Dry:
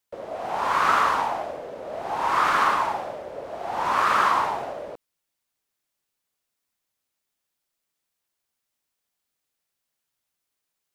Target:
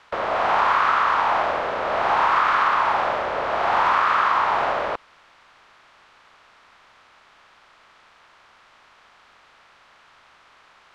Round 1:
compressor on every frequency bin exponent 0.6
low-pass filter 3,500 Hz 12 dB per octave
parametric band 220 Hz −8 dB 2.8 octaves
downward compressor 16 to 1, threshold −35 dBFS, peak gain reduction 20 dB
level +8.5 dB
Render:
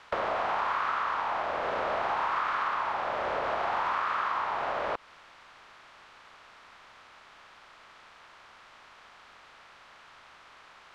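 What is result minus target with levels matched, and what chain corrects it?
downward compressor: peak gain reduction +11 dB
compressor on every frequency bin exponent 0.6
low-pass filter 3,500 Hz 12 dB per octave
parametric band 220 Hz −8 dB 2.8 octaves
downward compressor 16 to 1, threshold −23.5 dBFS, peak gain reduction 9.5 dB
level +8.5 dB

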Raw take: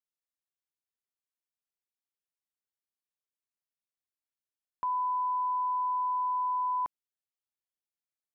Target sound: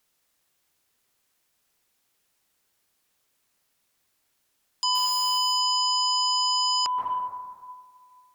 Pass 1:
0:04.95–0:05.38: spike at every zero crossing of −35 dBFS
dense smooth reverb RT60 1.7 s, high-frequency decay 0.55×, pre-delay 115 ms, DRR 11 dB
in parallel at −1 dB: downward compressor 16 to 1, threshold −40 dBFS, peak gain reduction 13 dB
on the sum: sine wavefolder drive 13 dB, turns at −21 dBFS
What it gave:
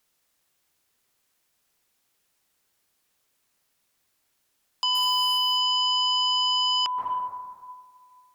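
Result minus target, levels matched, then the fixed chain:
downward compressor: peak gain reduction +7.5 dB
0:04.95–0:05.38: spike at every zero crossing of −35 dBFS
dense smooth reverb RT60 1.7 s, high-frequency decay 0.55×, pre-delay 115 ms, DRR 11 dB
in parallel at −1 dB: downward compressor 16 to 1, threshold −32 dBFS, peak gain reduction 5.5 dB
on the sum: sine wavefolder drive 13 dB, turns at −21 dBFS

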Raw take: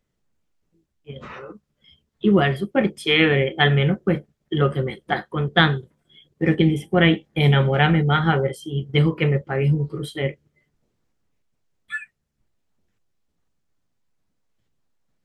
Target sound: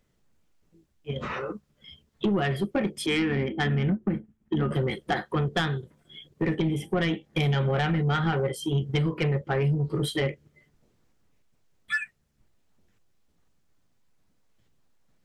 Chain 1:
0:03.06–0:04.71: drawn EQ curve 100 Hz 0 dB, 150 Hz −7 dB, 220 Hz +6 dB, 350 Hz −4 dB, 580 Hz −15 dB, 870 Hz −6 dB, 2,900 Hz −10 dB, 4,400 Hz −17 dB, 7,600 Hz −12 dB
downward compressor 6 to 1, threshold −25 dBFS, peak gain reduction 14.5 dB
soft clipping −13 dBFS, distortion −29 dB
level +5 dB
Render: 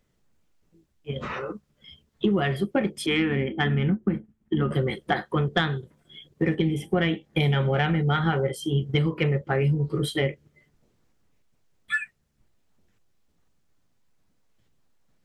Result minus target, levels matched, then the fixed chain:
soft clipping: distortion −14 dB
0:03.06–0:04.71: drawn EQ curve 100 Hz 0 dB, 150 Hz −7 dB, 220 Hz +6 dB, 350 Hz −4 dB, 580 Hz −15 dB, 870 Hz −6 dB, 2,900 Hz −10 dB, 4,400 Hz −17 dB, 7,600 Hz −12 dB
downward compressor 6 to 1, threshold −25 dBFS, peak gain reduction 14.5 dB
soft clipping −23 dBFS, distortion −15 dB
level +5 dB

